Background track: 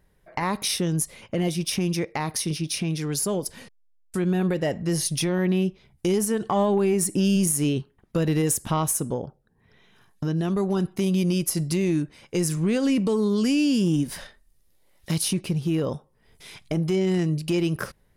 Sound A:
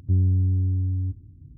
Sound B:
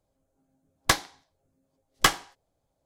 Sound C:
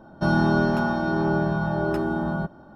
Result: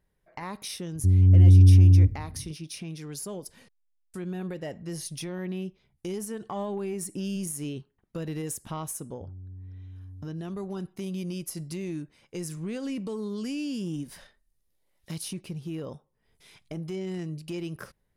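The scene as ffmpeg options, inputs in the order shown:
-filter_complex "[1:a]asplit=2[a][b];[0:a]volume=-11dB[c];[a]dynaudnorm=f=110:g=7:m=11.5dB[d];[b]acompressor=threshold=-22dB:ratio=6:attack=3.2:release=140:knee=1:detection=peak[e];[d]atrim=end=1.57,asetpts=PTS-STARTPTS,volume=-1dB,afade=t=in:d=0.004:c=hsin,afade=t=out:st=1.566:d=0.004:c=hsin,adelay=950[f];[e]atrim=end=1.57,asetpts=PTS-STARTPTS,volume=-17.5dB,afade=t=in:d=0.004:c=hsin,afade=t=out:st=1.566:d=0.004:c=hsin,adelay=9120[g];[c][f][g]amix=inputs=3:normalize=0"

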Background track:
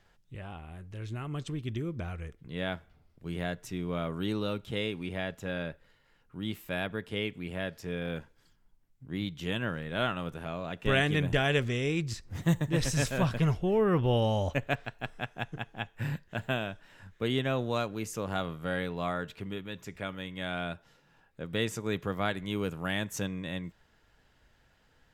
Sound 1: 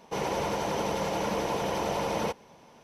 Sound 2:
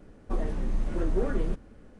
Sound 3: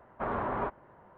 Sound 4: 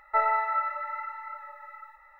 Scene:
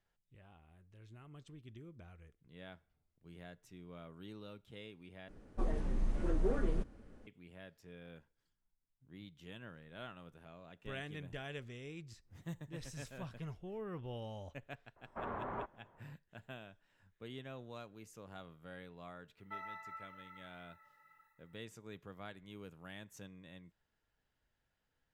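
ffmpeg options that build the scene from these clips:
-filter_complex "[0:a]volume=-18.5dB[a];[4:a]aderivative[b];[a]asplit=2[c][d];[c]atrim=end=5.284[e];[2:a]atrim=end=1.99,asetpts=PTS-STARTPTS,volume=-6dB[f];[d]atrim=start=7.266[g];[3:a]atrim=end=1.17,asetpts=PTS-STARTPTS,volume=-9.5dB,afade=t=in:d=0.004:c=hsin,afade=t=out:st=1.166:d=0.004:c=hsin,adelay=14960[h];[b]atrim=end=2.19,asetpts=PTS-STARTPTS,volume=-7dB,afade=t=in:d=0.004:c=hsin,afade=t=out:st=2.186:d=0.004:c=hsin,adelay=19370[i];[e][f]acrossfade=d=0.004:c1=hsin:c2=hsin[j];[j][g]acrossfade=d=0.004:c1=hsin:c2=hsin[k];[k][h][i]amix=inputs=3:normalize=0"

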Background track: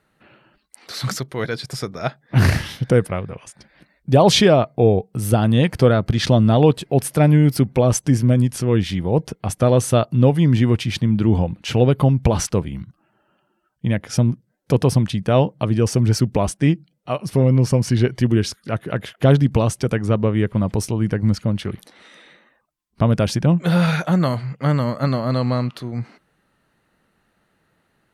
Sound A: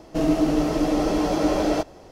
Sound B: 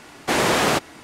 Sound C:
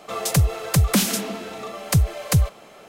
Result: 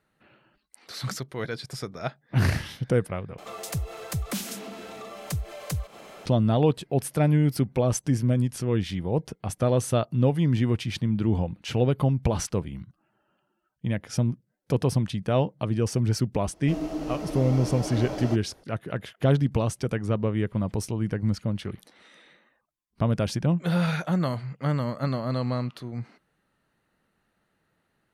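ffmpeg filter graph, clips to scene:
-filter_complex "[0:a]volume=-7.5dB[a];[3:a]acompressor=mode=upward:threshold=-19dB:ratio=2.5:attack=3.2:release=140:knee=2.83:detection=peak[b];[a]asplit=2[c][d];[c]atrim=end=3.384[e];[b]atrim=end=2.88,asetpts=PTS-STARTPTS,volume=-12.5dB[f];[d]atrim=start=6.256[g];[1:a]atrim=end=2.11,asetpts=PTS-STARTPTS,volume=-11dB,afade=t=in:d=0.004:c=hsin,afade=t=out:st=2.106:d=0.004:c=hsin,adelay=16530[h];[e][f]acrossfade=d=0.004:c1=hsin:c2=hsin[i];[i][g]acrossfade=d=0.004:c1=hsin:c2=hsin[j];[j][h]amix=inputs=2:normalize=0"

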